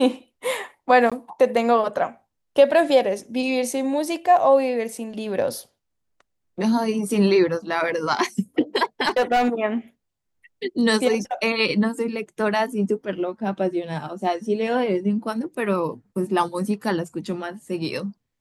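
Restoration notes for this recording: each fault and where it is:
1.10–1.12 s: dropout 16 ms
9.07–9.49 s: clipped -15 dBFS

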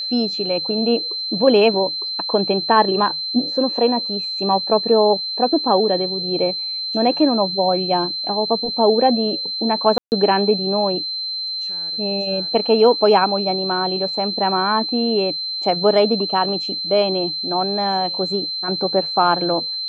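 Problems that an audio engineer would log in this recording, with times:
whine 4.1 kHz -23 dBFS
9.98–10.12 s: dropout 139 ms

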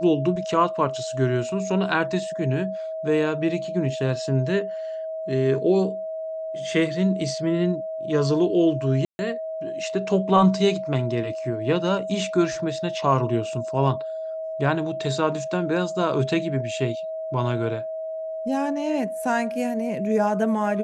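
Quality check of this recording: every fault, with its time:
whine 640 Hz -28 dBFS
9.05–9.19 s: dropout 140 ms

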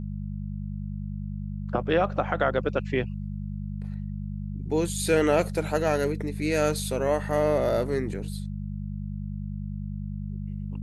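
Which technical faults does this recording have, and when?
hum 50 Hz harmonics 4 -33 dBFS

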